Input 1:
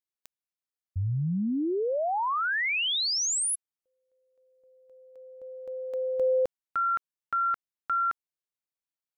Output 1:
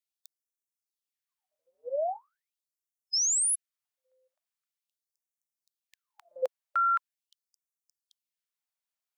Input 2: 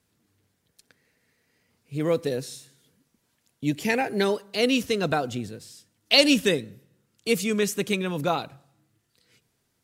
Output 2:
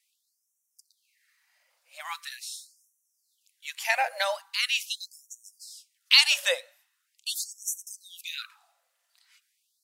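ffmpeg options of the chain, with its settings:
-af "afftfilt=real='re*gte(b*sr/1024,490*pow(5600/490,0.5+0.5*sin(2*PI*0.42*pts/sr)))':imag='im*gte(b*sr/1024,490*pow(5600/490,0.5+0.5*sin(2*PI*0.42*pts/sr)))':win_size=1024:overlap=0.75,volume=1.19"

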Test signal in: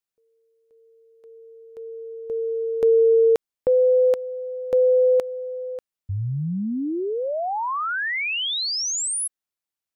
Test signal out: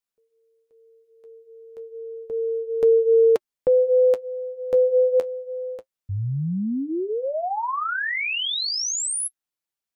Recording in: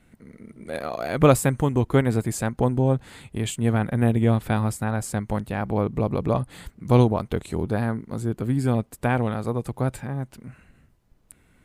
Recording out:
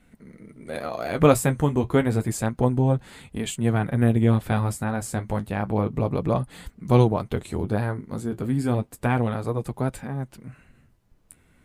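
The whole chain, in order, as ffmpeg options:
-af "flanger=delay=3.8:depth=9.6:regen=-45:speed=0.3:shape=triangular,volume=1.5"

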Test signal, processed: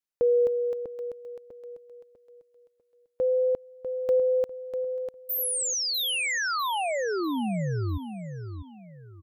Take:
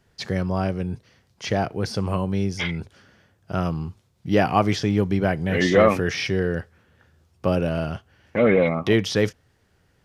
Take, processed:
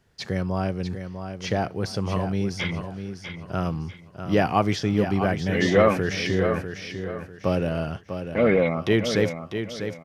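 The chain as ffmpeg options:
-af "aecho=1:1:647|1294|1941|2588:0.376|0.117|0.0361|0.0112,volume=0.794"

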